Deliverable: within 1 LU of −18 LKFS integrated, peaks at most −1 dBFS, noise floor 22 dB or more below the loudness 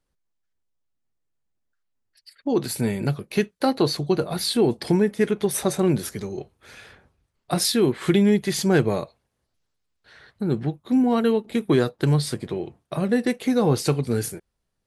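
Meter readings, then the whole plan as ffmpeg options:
integrated loudness −23.0 LKFS; sample peak −7.5 dBFS; target loudness −18.0 LKFS
→ -af "volume=5dB"

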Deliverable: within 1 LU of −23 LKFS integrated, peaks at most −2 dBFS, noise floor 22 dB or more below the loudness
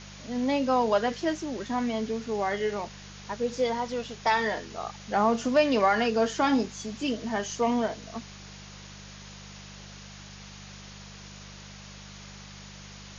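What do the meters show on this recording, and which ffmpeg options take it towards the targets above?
mains hum 50 Hz; hum harmonics up to 200 Hz; level of the hum −45 dBFS; background noise floor −46 dBFS; target noise floor −50 dBFS; integrated loudness −27.5 LKFS; sample peak −11.0 dBFS; target loudness −23.0 LKFS
→ -af "bandreject=frequency=50:width_type=h:width=4,bandreject=frequency=100:width_type=h:width=4,bandreject=frequency=150:width_type=h:width=4,bandreject=frequency=200:width_type=h:width=4"
-af "afftdn=noise_reduction=6:noise_floor=-46"
-af "volume=4.5dB"

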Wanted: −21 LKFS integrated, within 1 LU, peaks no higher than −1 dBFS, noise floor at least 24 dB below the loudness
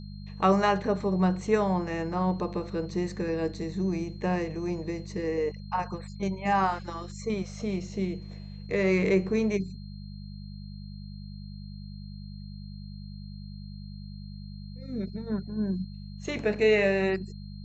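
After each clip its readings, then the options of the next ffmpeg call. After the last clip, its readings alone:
mains hum 50 Hz; hum harmonics up to 200 Hz; level of the hum −39 dBFS; interfering tone 4,200 Hz; level of the tone −55 dBFS; integrated loudness −29.0 LKFS; sample peak −11.0 dBFS; target loudness −21.0 LKFS
→ -af "bandreject=frequency=50:width_type=h:width=4,bandreject=frequency=100:width_type=h:width=4,bandreject=frequency=150:width_type=h:width=4,bandreject=frequency=200:width_type=h:width=4"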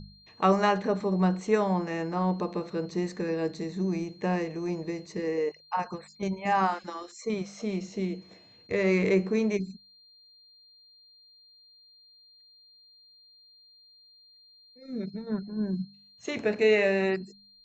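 mains hum none found; interfering tone 4,200 Hz; level of the tone −55 dBFS
→ -af "bandreject=frequency=4200:width=30"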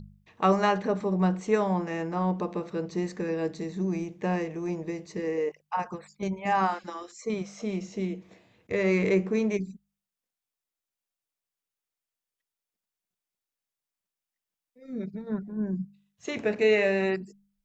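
interfering tone none found; integrated loudness −29.0 LKFS; sample peak −11.5 dBFS; target loudness −21.0 LKFS
→ -af "volume=8dB"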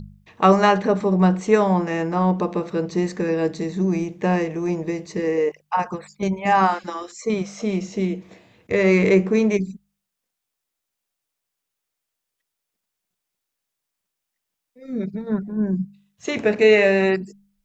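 integrated loudness −21.0 LKFS; sample peak −3.5 dBFS; background noise floor −82 dBFS

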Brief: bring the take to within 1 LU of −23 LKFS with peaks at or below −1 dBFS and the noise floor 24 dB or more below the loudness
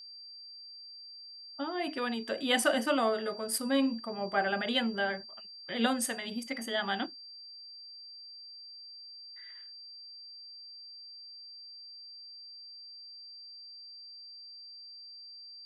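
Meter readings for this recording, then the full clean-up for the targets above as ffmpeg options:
interfering tone 4,700 Hz; level of the tone −46 dBFS; integrated loudness −32.0 LKFS; sample peak −14.0 dBFS; target loudness −23.0 LKFS
→ -af "bandreject=frequency=4700:width=30"
-af "volume=9dB"

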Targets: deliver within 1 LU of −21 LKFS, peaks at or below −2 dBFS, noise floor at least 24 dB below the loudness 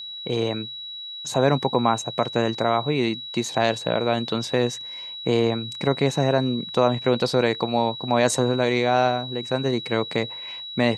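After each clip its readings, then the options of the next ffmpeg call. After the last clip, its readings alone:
interfering tone 3,900 Hz; level of the tone −33 dBFS; integrated loudness −23.5 LKFS; sample peak −5.0 dBFS; target loudness −21.0 LKFS
→ -af "bandreject=frequency=3900:width=30"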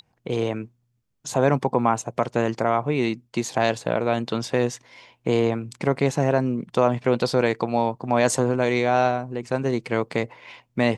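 interfering tone none found; integrated loudness −23.5 LKFS; sample peak −5.5 dBFS; target loudness −21.0 LKFS
→ -af "volume=2.5dB"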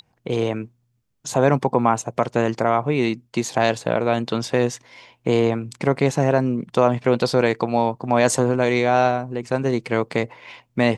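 integrated loudness −21.0 LKFS; sample peak −3.0 dBFS; background noise floor −68 dBFS

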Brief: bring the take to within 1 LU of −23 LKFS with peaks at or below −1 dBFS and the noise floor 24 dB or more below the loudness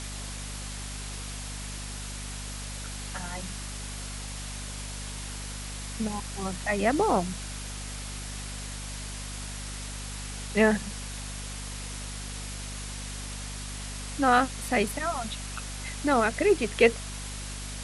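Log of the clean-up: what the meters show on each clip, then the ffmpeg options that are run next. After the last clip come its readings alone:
mains hum 50 Hz; hum harmonics up to 250 Hz; level of the hum −36 dBFS; background noise floor −37 dBFS; target noise floor −55 dBFS; integrated loudness −31.0 LKFS; sample peak −6.0 dBFS; target loudness −23.0 LKFS
→ -af "bandreject=frequency=50:width_type=h:width=6,bandreject=frequency=100:width_type=h:width=6,bandreject=frequency=150:width_type=h:width=6,bandreject=frequency=200:width_type=h:width=6,bandreject=frequency=250:width_type=h:width=6"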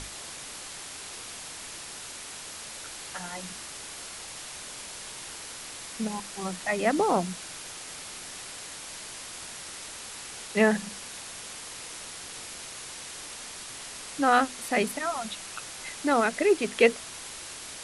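mains hum none found; background noise floor −42 dBFS; target noise floor −55 dBFS
→ -af "afftdn=noise_reduction=13:noise_floor=-42"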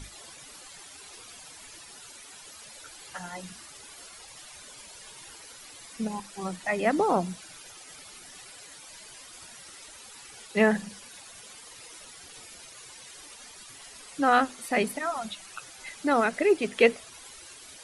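background noise floor −48 dBFS; target noise floor −51 dBFS
→ -af "afftdn=noise_reduction=6:noise_floor=-48"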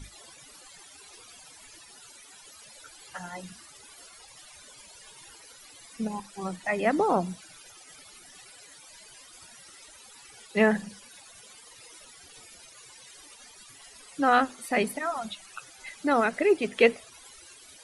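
background noise floor −52 dBFS; integrated loudness −27.0 LKFS; sample peak −6.0 dBFS; target loudness −23.0 LKFS
→ -af "volume=4dB"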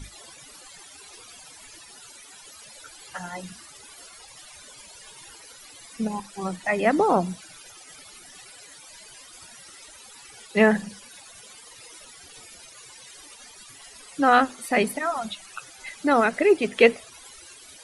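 integrated loudness −23.0 LKFS; sample peak −2.0 dBFS; background noise floor −48 dBFS

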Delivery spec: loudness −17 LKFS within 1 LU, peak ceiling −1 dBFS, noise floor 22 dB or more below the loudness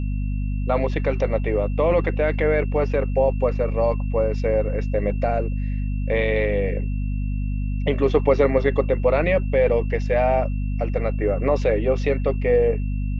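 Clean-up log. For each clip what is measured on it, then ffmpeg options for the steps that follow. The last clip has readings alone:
mains hum 50 Hz; hum harmonics up to 250 Hz; level of the hum −22 dBFS; interfering tone 2,700 Hz; level of the tone −47 dBFS; integrated loudness −22.0 LKFS; sample peak −4.0 dBFS; target loudness −17.0 LKFS
→ -af "bandreject=frequency=50:width_type=h:width=6,bandreject=frequency=100:width_type=h:width=6,bandreject=frequency=150:width_type=h:width=6,bandreject=frequency=200:width_type=h:width=6,bandreject=frequency=250:width_type=h:width=6"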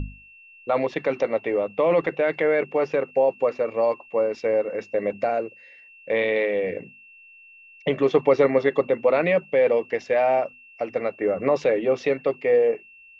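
mains hum none found; interfering tone 2,700 Hz; level of the tone −47 dBFS
→ -af "bandreject=frequency=2700:width=30"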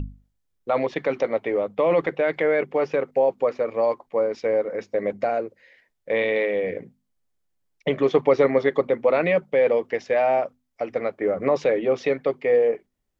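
interfering tone none found; integrated loudness −23.0 LKFS; sample peak −6.0 dBFS; target loudness −17.0 LKFS
→ -af "volume=6dB,alimiter=limit=-1dB:level=0:latency=1"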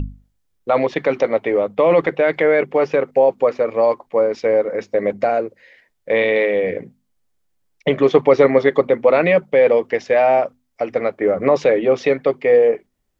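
integrated loudness −17.0 LKFS; sample peak −1.0 dBFS; background noise floor −69 dBFS

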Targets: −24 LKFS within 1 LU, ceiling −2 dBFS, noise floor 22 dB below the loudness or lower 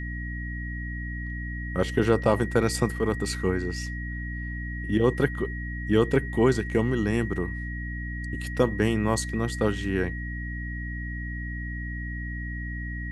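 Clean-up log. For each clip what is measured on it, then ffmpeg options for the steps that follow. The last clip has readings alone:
mains hum 60 Hz; hum harmonics up to 300 Hz; level of the hum −31 dBFS; interfering tone 1,900 Hz; level of the tone −37 dBFS; integrated loudness −28.0 LKFS; sample peak −7.0 dBFS; target loudness −24.0 LKFS
→ -af "bandreject=frequency=60:width_type=h:width=4,bandreject=frequency=120:width_type=h:width=4,bandreject=frequency=180:width_type=h:width=4,bandreject=frequency=240:width_type=h:width=4,bandreject=frequency=300:width_type=h:width=4"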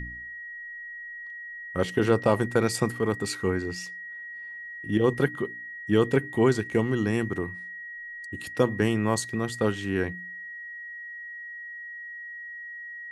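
mains hum none found; interfering tone 1,900 Hz; level of the tone −37 dBFS
→ -af "bandreject=frequency=1900:width=30"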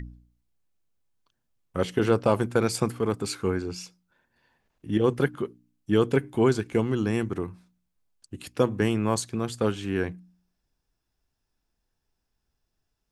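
interfering tone none found; integrated loudness −26.5 LKFS; sample peak −7.5 dBFS; target loudness −24.0 LKFS
→ -af "volume=2.5dB"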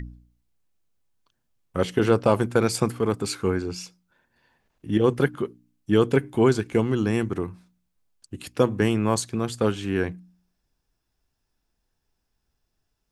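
integrated loudness −24.0 LKFS; sample peak −5.0 dBFS; background noise floor −77 dBFS

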